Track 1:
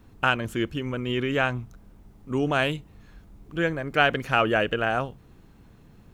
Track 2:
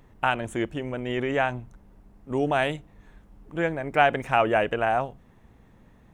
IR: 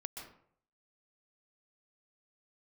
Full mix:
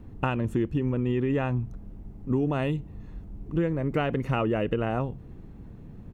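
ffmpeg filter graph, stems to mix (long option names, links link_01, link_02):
-filter_complex "[0:a]tiltshelf=frequency=970:gain=9.5,volume=-0.5dB[link_01];[1:a]equalizer=frequency=2500:width_type=o:width=0.98:gain=8,adelay=1.4,volume=-11.5dB[link_02];[link_01][link_02]amix=inputs=2:normalize=0,acompressor=threshold=-22dB:ratio=6"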